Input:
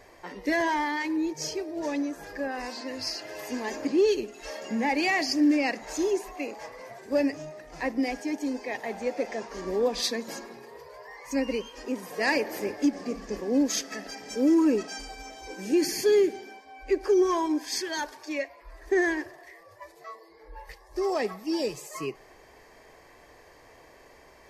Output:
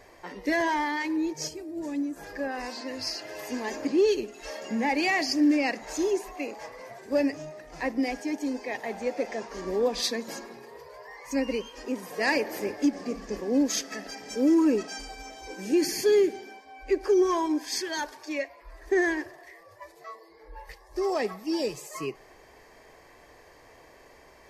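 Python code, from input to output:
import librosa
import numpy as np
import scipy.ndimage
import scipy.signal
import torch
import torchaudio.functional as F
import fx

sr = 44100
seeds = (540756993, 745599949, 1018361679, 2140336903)

y = fx.spec_box(x, sr, start_s=1.48, length_s=0.68, low_hz=350.0, high_hz=6700.0, gain_db=-9)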